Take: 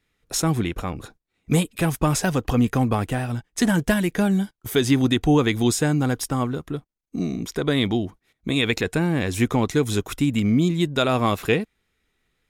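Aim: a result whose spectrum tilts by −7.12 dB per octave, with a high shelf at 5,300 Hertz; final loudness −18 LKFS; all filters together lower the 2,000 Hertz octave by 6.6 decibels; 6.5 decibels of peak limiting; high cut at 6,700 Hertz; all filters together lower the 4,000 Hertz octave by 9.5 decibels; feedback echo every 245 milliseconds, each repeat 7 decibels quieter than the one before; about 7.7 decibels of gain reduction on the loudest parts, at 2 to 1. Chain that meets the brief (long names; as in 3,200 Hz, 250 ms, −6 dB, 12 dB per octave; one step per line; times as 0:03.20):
low-pass filter 6,700 Hz
parametric band 2,000 Hz −6 dB
parametric band 4,000 Hz −6 dB
high-shelf EQ 5,300 Hz −8.5 dB
downward compressor 2 to 1, threshold −29 dBFS
brickwall limiter −21 dBFS
repeating echo 245 ms, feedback 45%, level −7 dB
level +13 dB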